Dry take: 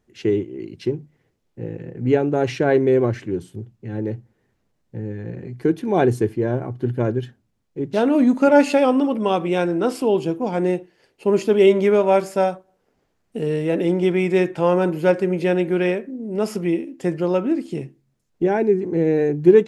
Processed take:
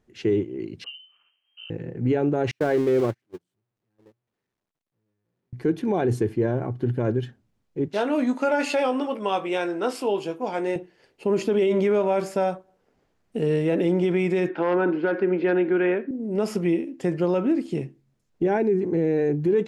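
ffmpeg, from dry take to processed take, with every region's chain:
-filter_complex "[0:a]asettb=1/sr,asplit=3[s0][s1][s2];[s0]atrim=end=0.844[s3];[s1]atrim=start=0.84:end=1.7,asetpts=PTS-STARTPTS,afade=t=in:d=0.004:c=qsin,afade=t=out:st=0.856:d=0.004:c=qsin,acompressor=threshold=0.00398:ratio=2:attack=3.2:release=140:knee=1:detection=peak,lowpass=f=2700:t=q:w=0.5098,lowpass=f=2700:t=q:w=0.6013,lowpass=f=2700:t=q:w=0.9,lowpass=f=2700:t=q:w=2.563,afreqshift=-3200[s4];[s2]atrim=start=1.696[s5];[s3][s4]acrossfade=d=0.004:c1=hsin:c2=qsin[s6];[s6][s5]acrossfade=d=0.004:c1=qsin:c2=hsin,asettb=1/sr,asplit=3[s7][s8][s9];[s7]atrim=end=2.514[s10];[s8]atrim=start=2.51:end=5.53,asetpts=PTS-STARTPTS,afade=t=in:d=0.004:c=qsin,afade=t=out:st=3.016:d=0.004:c=qsin,aeval=exprs='val(0)+0.5*0.0473*sgn(val(0))':c=same,agate=range=0.00316:threshold=0.126:ratio=16:release=100:detection=peak,lowshelf=f=75:g=-10.5[s11];[s9]atrim=start=5.526[s12];[s10][s11]acrossfade=d=0.004:c1=hsin:c2=qsin[s13];[s13][s12]acrossfade=d=0.004:c1=qsin:c2=hsin,asettb=1/sr,asplit=3[s14][s15][s16];[s14]atrim=end=7.884[s17];[s15]atrim=start=7.88:end=10.76,asetpts=PTS-STARTPTS,afade=t=in:d=0.004:c=qsin,afade=t=out:st=2.876:d=0.004:c=qsin,highpass=f=710:p=1,asplit=2[s18][s19];[s19]adelay=20,volume=0.355[s20];[s18][s20]amix=inputs=2:normalize=0,atrim=end_sample=127008[s21];[s16]atrim=start=10.756[s22];[s17][s21]acrossfade=d=0.004:c1=hsin:c2=qsin[s23];[s23][s22]acrossfade=d=0.004:c1=qsin:c2=hsin,asettb=1/sr,asplit=3[s24][s25][s26];[s24]atrim=end=14.494[s27];[s25]atrim=start=14.49:end=16.11,asetpts=PTS-STARTPTS,afade=t=in:d=0.004:c=qsin,afade=t=out:st=1.616:d=0.004:c=qsin,acrossover=split=2700[s28][s29];[s29]acompressor=threshold=0.00251:ratio=4:attack=1:release=60[s30];[s28][s30]amix=inputs=2:normalize=0,asoftclip=type=hard:threshold=0.335,highpass=f=220:w=0.5412,highpass=f=220:w=1.3066,equalizer=f=280:t=q:w=4:g=7,equalizer=f=570:t=q:w=4:g=-4,equalizer=f=1500:t=q:w=4:g=7,lowpass=f=4400:w=0.5412,lowpass=f=4400:w=1.3066[s31];[s26]atrim=start=16.106[s32];[s27][s31]acrossfade=d=0.004:c1=hsin:c2=qsin[s33];[s33][s32]acrossfade=d=0.004:c1=qsin:c2=hsin,highshelf=f=7800:g=-6.5,alimiter=limit=0.2:level=0:latency=1:release=43"

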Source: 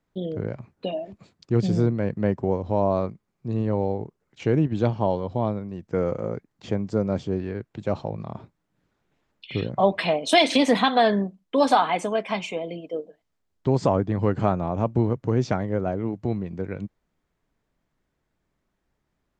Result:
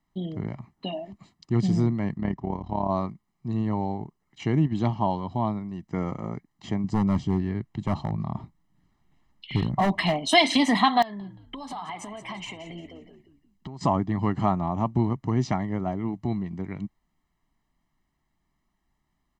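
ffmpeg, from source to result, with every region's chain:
-filter_complex "[0:a]asettb=1/sr,asplit=3[s0][s1][s2];[s0]atrim=end=2.174[s3];[s1]atrim=start=2.17:end=2.9,asetpts=PTS-STARTPTS,afade=t=in:d=0.004:c=qsin,afade=t=out:st=0.726:d=0.004:c=qsin,lowpass=5700,tremolo=f=36:d=0.71[s4];[s2]atrim=start=2.896[s5];[s3][s4]acrossfade=d=0.004:c1=hsin:c2=qsin[s6];[s6][s5]acrossfade=d=0.004:c1=qsin:c2=hsin,asettb=1/sr,asplit=3[s7][s8][s9];[s7]atrim=end=6.844[s10];[s8]atrim=start=6.84:end=10.31,asetpts=PTS-STARTPTS,afade=t=in:d=0.004:c=qsin,afade=t=out:st=3.466:d=0.004:c=qsin,lowshelf=f=200:g=9,asoftclip=type=hard:threshold=0.178[s11];[s9]atrim=start=10.306[s12];[s10][s11]acrossfade=d=0.004:c1=hsin:c2=qsin[s13];[s13][s12]acrossfade=d=0.004:c1=qsin:c2=hsin,asettb=1/sr,asplit=3[s14][s15][s16];[s14]atrim=end=11.024[s17];[s15]atrim=start=11.02:end=13.81,asetpts=PTS-STARTPTS,afade=t=in:d=0.004:c=qsin,afade=t=out:st=2.786:d=0.004:c=qsin,acompressor=threshold=0.0251:ratio=12:attack=3.2:release=140:knee=1:detection=peak,asplit=5[s18][s19][s20][s21][s22];[s19]adelay=176,afreqshift=-85,volume=0.266[s23];[s20]adelay=352,afreqshift=-170,volume=0.0902[s24];[s21]adelay=528,afreqshift=-255,volume=0.0309[s25];[s22]adelay=704,afreqshift=-340,volume=0.0105[s26];[s18][s23][s24][s25][s26]amix=inputs=5:normalize=0,atrim=end_sample=123039,aeval=exprs='(mod(14.1*val(0)+1,2)-1)/14.1':c=same[s27];[s16]atrim=start=13.806[s28];[s17][s27]acrossfade=d=0.004:c1=hsin:c2=qsin[s29];[s29][s28]acrossfade=d=0.004:c1=qsin:c2=hsin,equalizer=f=96:w=1.8:g=-6.5,aecho=1:1:1:0.81,volume=0.794"

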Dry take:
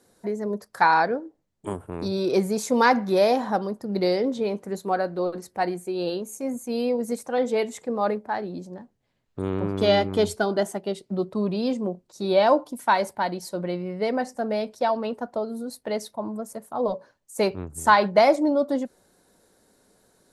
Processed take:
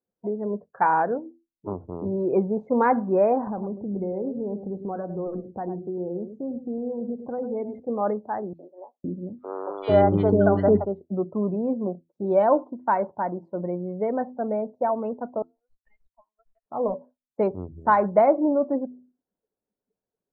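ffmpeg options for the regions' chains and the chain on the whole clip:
-filter_complex "[0:a]asettb=1/sr,asplit=3[s0][s1][s2];[s0]atrim=end=3.474[s3];[s1]atrim=start=3.47:end=7.8,asetpts=PTS-STARTPTS,afade=t=in:d=0.004:c=qsin,afade=t=out:st=4.326:d=0.004:c=qsin,lowshelf=f=300:g=10,acompressor=threshold=0.0355:ratio=3:attack=3.2:release=140:knee=1:detection=peak,aecho=1:1:104:0.335,atrim=end_sample=190953[s4];[s2]atrim=start=7.796[s5];[s3][s4]acrossfade=d=0.004:c1=hsin:c2=qsin[s6];[s6][s5]acrossfade=d=0.004:c1=qsin:c2=hsin,asettb=1/sr,asplit=3[s7][s8][s9];[s7]atrim=end=8.534[s10];[s8]atrim=start=8.53:end=10.85,asetpts=PTS-STARTPTS,afade=t=in:d=0.004:c=qsin,afade=t=out:st=2.316:d=0.004:c=qsin,acrossover=split=500|1800[s11][s12][s13];[s12]adelay=60[s14];[s11]adelay=510[s15];[s15][s14][s13]amix=inputs=3:normalize=0,atrim=end_sample=102312,acontrast=62[s16];[s9]atrim=start=10.846[s17];[s10][s16]acrossfade=d=0.004:c1=hsin:c2=qsin[s18];[s18][s17]acrossfade=d=0.004:c1=qsin:c2=hsin,asettb=1/sr,asplit=3[s19][s20][s21];[s19]atrim=end=15.424[s22];[s20]atrim=start=15.42:end=16.66,asetpts=PTS-STARTPTS,afade=t=in:d=0.004:c=qsin,afade=t=out:st=1.236:d=0.004:c=qsin,highpass=f=2400:t=q:w=2.7,acompressor=threshold=0.00891:ratio=6:attack=3.2:release=140:knee=1:detection=peak,aeval=exprs='(tanh(126*val(0)+0.65)-tanh(0.65))/126':c=same[s23];[s21]atrim=start=16.656[s24];[s22][s23]acrossfade=d=0.004:c1=hsin:c2=qsin[s25];[s25][s24]acrossfade=d=0.004:c1=qsin:c2=hsin,lowpass=1100,bandreject=f=83.44:t=h:w=4,bandreject=f=166.88:t=h:w=4,bandreject=f=250.32:t=h:w=4,bandreject=f=333.76:t=h:w=4,afftdn=nr=27:nf=-45"

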